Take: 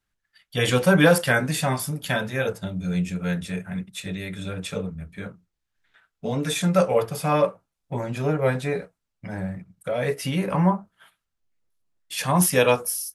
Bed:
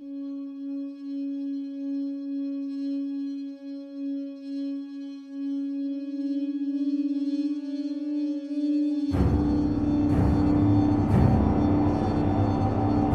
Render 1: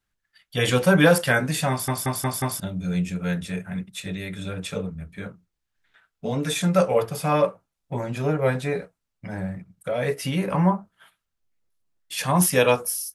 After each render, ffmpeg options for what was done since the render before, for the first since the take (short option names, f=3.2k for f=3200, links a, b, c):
-filter_complex "[0:a]asplit=6[a][b][c][d][e][f];[a]atrim=end=1.882[g];[b]atrim=start=1.698:end=1.882[h];[c]atrim=start=1.698:end=1.882[i];[d]atrim=start=1.698:end=1.882[j];[e]atrim=start=1.698:end=1.882[k];[f]atrim=start=2.598[l];[g][h]acrossfade=d=0.004:c1=hsin:c2=hsin[m];[m][i]acrossfade=d=0.004:c1=hsin:c2=hsin[n];[n][j]acrossfade=d=0.004:c1=hsin:c2=hsin[o];[o][k]acrossfade=d=0.004:c1=hsin:c2=hsin[p];[p][l]acrossfade=d=0.004:c1=hsin:c2=hsin"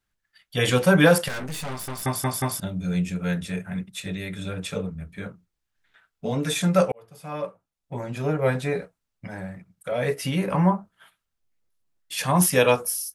-filter_complex "[0:a]asettb=1/sr,asplit=3[a][b][c];[a]atrim=end=1.284[d];[b]atrim=start=1.28:end=2.03,asetpts=PTS-STARTPTS,afade=t=in:d=0.004:c=qsin,afade=t=out:st=0.746:d=0.004:c=qsin,aeval=exprs='(tanh(31.6*val(0)+0.75)-tanh(0.75))/31.6':c=same[e];[c]atrim=start=2.026[f];[d][e]acrossfade=d=0.004:c1=hsin:c2=qsin[g];[g][f]acrossfade=d=0.004:c1=qsin:c2=hsin,asettb=1/sr,asplit=3[h][i][j];[h]atrim=end=9.274[k];[i]atrim=start=9.27:end=9.92,asetpts=PTS-STARTPTS,afade=t=in:d=0.004:c=qsin,afade=t=out:st=0.646:d=0.004:c=qsin,lowshelf=f=420:g=-7[l];[j]atrim=start=9.916[m];[k][l]acrossfade=d=0.004:c1=hsin:c2=qsin[n];[n][m]acrossfade=d=0.004:c1=qsin:c2=hsin,asplit=2[o][p];[o]atrim=end=6.92,asetpts=PTS-STARTPTS,afade=t=out:st=6.916:d=0.004:c=hsin[q];[p]atrim=start=6.92,asetpts=PTS-STARTPTS,afade=t=in:d=1.62[r];[q][r]concat=n=2:v=0:a=1"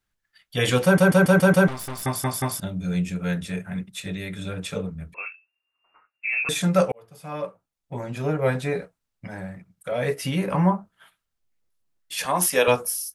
-filter_complex "[0:a]asettb=1/sr,asplit=3[a][b][c];[a]atrim=end=5.144[d];[b]atrim=start=5.14:end=6.49,asetpts=PTS-STARTPTS,afade=t=in:d=0.004:c=qsin,afade=t=out:st=1.346:d=0.004:c=qsin,lowpass=f=2.4k:t=q:w=0.5098,lowpass=f=2.4k:t=q:w=0.6013,lowpass=f=2.4k:t=q:w=0.9,lowpass=f=2.4k:t=q:w=2.563,afreqshift=-2800[e];[c]atrim=start=6.486[f];[d][e]acrossfade=d=0.004:c1=hsin:c2=qsin[g];[g][f]acrossfade=d=0.004:c1=qsin:c2=hsin,asettb=1/sr,asplit=3[h][i][j];[h]atrim=end=12.254[k];[i]atrim=start=12.25:end=12.68,asetpts=PTS-STARTPTS,afade=t=in:d=0.004:c=qsin,afade=t=out:st=0.426:d=0.004:c=qsin,highpass=330[l];[j]atrim=start=12.676[m];[k][l]acrossfade=d=0.004:c1=hsin:c2=qsin[n];[n][m]acrossfade=d=0.004:c1=qsin:c2=hsin,asplit=7[o][p][q][r][s][t][u];[o]atrim=end=0.982[v];[p]atrim=start=0.838:end=0.982[w];[q]atrim=start=0.838:end=0.982[x];[r]atrim=start=0.838:end=0.982[y];[s]atrim=start=0.838:end=0.982[z];[t]atrim=start=0.838:end=0.982[aa];[u]atrim=start=1.678[ab];[v][w]acrossfade=d=0.004:c1=hsin:c2=hsin[ac];[ac][x]acrossfade=d=0.004:c1=hsin:c2=hsin[ad];[ad][y]acrossfade=d=0.004:c1=hsin:c2=hsin[ae];[ae][z]acrossfade=d=0.004:c1=hsin:c2=hsin[af];[af][aa]acrossfade=d=0.004:c1=hsin:c2=hsin[ag];[ag][ab]acrossfade=d=0.004:c1=hsin:c2=hsin"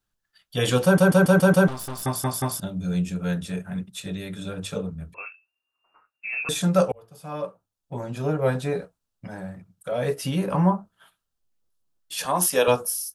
-af "equalizer=f=2.1k:t=o:w=0.5:g=-9,bandreject=f=50:t=h:w=6,bandreject=f=100:t=h:w=6"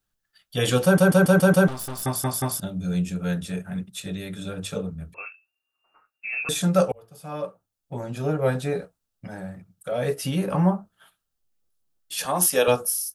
-af "highshelf=f=11k:g=5,bandreject=f=1k:w=12"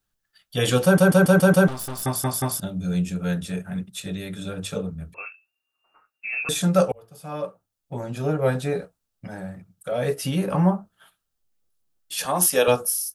-af "volume=1dB"